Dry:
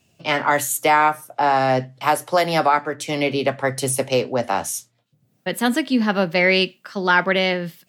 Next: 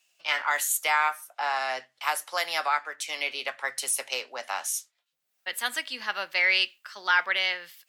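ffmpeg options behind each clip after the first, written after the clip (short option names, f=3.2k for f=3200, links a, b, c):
-af "highpass=1.3k,volume=-3dB"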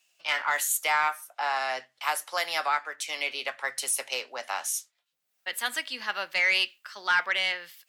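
-af "asoftclip=type=tanh:threshold=-13dB"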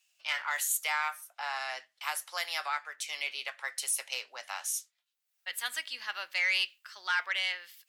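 -af "highpass=f=1.5k:p=1,volume=-3dB"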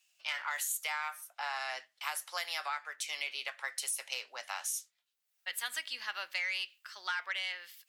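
-af "acompressor=threshold=-32dB:ratio=6"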